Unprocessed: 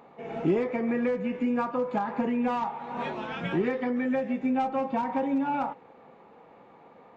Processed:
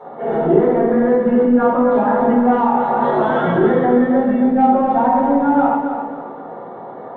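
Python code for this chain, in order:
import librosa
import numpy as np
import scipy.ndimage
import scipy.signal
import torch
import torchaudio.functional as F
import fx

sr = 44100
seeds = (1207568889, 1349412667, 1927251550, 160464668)

p1 = fx.highpass(x, sr, hz=420.0, slope=6)
p2 = fx.over_compress(p1, sr, threshold_db=-38.0, ratio=-1.0)
p3 = p1 + (p2 * 10.0 ** (-1.0 / 20.0))
p4 = scipy.signal.lfilter(np.full(18, 1.0 / 18), 1.0, p3)
p5 = 10.0 ** (-17.5 / 20.0) * np.tanh(p4 / 10.0 ** (-17.5 / 20.0))
p6 = p5 + fx.echo_feedback(p5, sr, ms=271, feedback_pct=36, wet_db=-7.5, dry=0)
p7 = fx.room_shoebox(p6, sr, seeds[0], volume_m3=84.0, walls='mixed', distance_m=4.3)
y = p7 * 10.0 ** (-1.0 / 20.0)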